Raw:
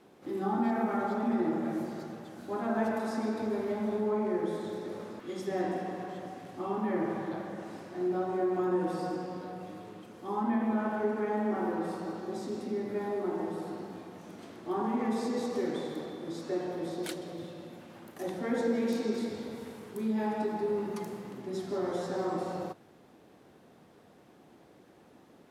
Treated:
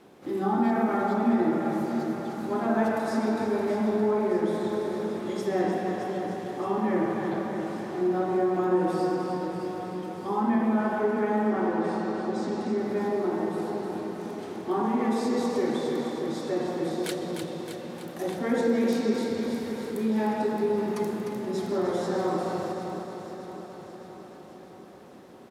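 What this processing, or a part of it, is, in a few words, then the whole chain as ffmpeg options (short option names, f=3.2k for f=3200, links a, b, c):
ducked delay: -filter_complex "[0:a]asettb=1/sr,asplit=3[a][b][c];[a]atrim=end=11.504[d];[b]atrim=start=11.5:end=12.78,asetpts=PTS-STARTPTS,afade=t=in:d=0.004:c=qsin,afade=t=out:st=1.276:d=0.004:c=qsin,lowpass=7.2k[e];[c]atrim=start=12.776[f];[d][e]acrossfade=d=0.004:c1=hsin:c2=qsin[g];[g][f]acrossfade=d=0.004:c1=qsin:c2=hsin,aecho=1:1:618|1236|1854|2472|3090|3708|4326:0.316|0.187|0.11|0.0649|0.0383|0.0226|0.0133,asplit=3[h][i][j];[i]adelay=302,volume=-5.5dB[k];[j]apad=whole_len=1187479[l];[k][l]sidechaincompress=threshold=-33dB:ratio=8:attack=16:release=289[m];[h][m]amix=inputs=2:normalize=0,volume=5dB"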